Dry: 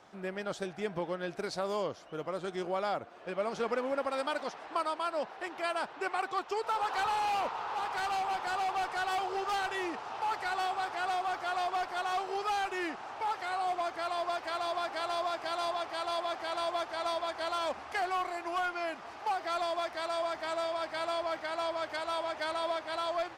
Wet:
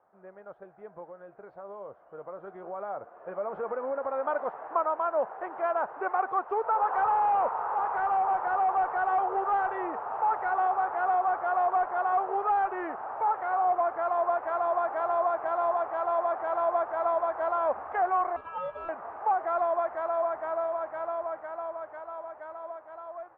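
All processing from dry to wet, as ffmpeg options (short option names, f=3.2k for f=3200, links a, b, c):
-filter_complex "[0:a]asettb=1/sr,asplit=3[a][b][c];[a]atrim=end=1.094[d];[b]atrim=start=1.09:end=4.25,asetpts=PTS-STARTPTS,afade=t=in:d=0.004:c=qsin,afade=t=out:st=3.156:d=0.004:c=qsin,acompressor=threshold=-33dB:ratio=3:attack=3.2:release=140:knee=1:detection=peak,asplit=2[e][f];[f]adelay=15,volume=-13dB[g];[e][g]amix=inputs=2:normalize=0,atrim=end_sample=139356[h];[c]atrim=start=4.246[i];[d][h]acrossfade=d=0.004:c1=hsin:c2=qsin[j];[j][i]acrossfade=d=0.004:c1=qsin:c2=hsin,asettb=1/sr,asplit=3[k][l][m];[k]atrim=end=18.364[n];[l]atrim=start=18.36:end=18.89,asetpts=PTS-STARTPTS,afade=t=in:d=0.004:c=qsin,afade=t=out:st=0.526:d=0.004:c=qsin,equalizer=f=580:w=0.48:g=-3.5,aeval=exprs='val(0)*sin(2*PI*2000*n/s)':c=same[o];[m]atrim=start=18.886[p];[n][o]acrossfade=d=0.004:c1=hsin:c2=qsin[q];[q][p]acrossfade=d=0.004:c1=qsin:c2=hsin,lowpass=f=1.4k:w=0.5412,lowpass=f=1.4k:w=1.3066,lowshelf=f=390:t=q:w=1.5:g=-6.5,dynaudnorm=f=460:g=13:m=15dB,volume=-9dB"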